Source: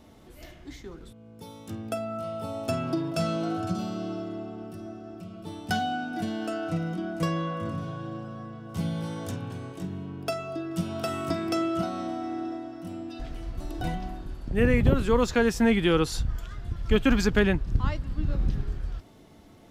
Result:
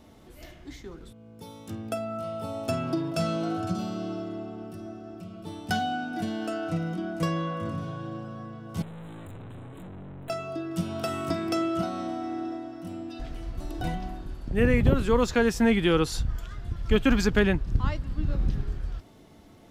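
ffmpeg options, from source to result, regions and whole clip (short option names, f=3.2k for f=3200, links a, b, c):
-filter_complex "[0:a]asettb=1/sr,asplit=3[a][b][c];[a]atrim=end=8.824[d];[b]atrim=start=8.82:end=10.3,asetpts=PTS-STARTPTS,afade=t=in:d=0.004:c=qsin,afade=t=out:st=1.476:d=0.004:c=qsin,lowshelf=f=200:g=10.5,aeval=exprs='(tanh(112*val(0)+0.4)-tanh(0.4))/112':c=same,asuperstop=centerf=5300:order=20:qfactor=1.9[e];[c]atrim=start=10.296[f];[d][e]acrossfade=d=0.004:c1=hsin:c2=qsin[g];[g][f]acrossfade=d=0.004:c1=qsin:c2=hsin"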